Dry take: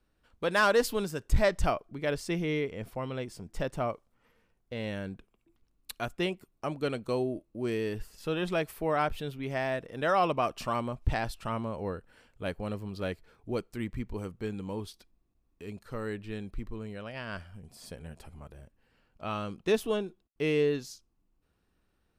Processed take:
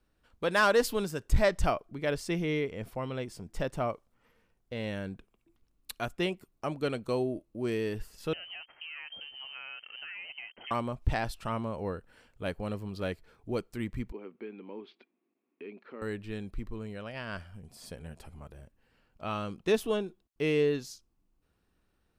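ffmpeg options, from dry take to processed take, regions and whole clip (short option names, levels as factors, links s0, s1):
-filter_complex "[0:a]asettb=1/sr,asplit=3[s0][s1][s2];[s0]atrim=end=8.334[s3];[s1]atrim=start=8.33:end=10.71,asetpts=PTS-STARTPTS,afade=t=in:d=0.004:c=qsin,afade=t=out:st=2.376:d=0.004:c=qsin,acompressor=threshold=0.0112:ratio=8:attack=3.2:release=140:knee=1:detection=peak,aeval=exprs='sgn(val(0))*max(abs(val(0))-0.00141,0)':c=same,lowpass=f=2700:t=q:w=0.5098,lowpass=f=2700:t=q:w=0.6013,lowpass=f=2700:t=q:w=0.9,lowpass=f=2700:t=q:w=2.563,afreqshift=-3200[s4];[s2]atrim=start=10.706[s5];[s3][s4]acrossfade=d=0.004:c1=hsin:c2=qsin[s6];[s6][s5]acrossfade=d=0.004:c1=qsin:c2=hsin,asettb=1/sr,asplit=3[s7][s8][s9];[s7]atrim=end=14.124[s10];[s8]atrim=start=14.12:end=16.02,asetpts=PTS-STARTPTS,afade=t=in:d=0.004:c=qsin,afade=t=out:st=1.896:d=0.004:c=qsin,acompressor=threshold=0.00708:ratio=2.5:attack=3.2:release=140:knee=1:detection=peak,highpass=f=240:w=0.5412,highpass=f=240:w=1.3066,equalizer=f=240:t=q:w=4:g=6,equalizer=f=380:t=q:w=4:g=7,equalizer=f=2300:t=q:w=4:g=7,lowpass=f=3100:w=0.5412,lowpass=f=3100:w=1.3066[s11];[s9]atrim=start=16.016[s12];[s10][s11]acrossfade=d=0.004:c1=hsin:c2=qsin[s13];[s13][s12]acrossfade=d=0.004:c1=qsin:c2=hsin"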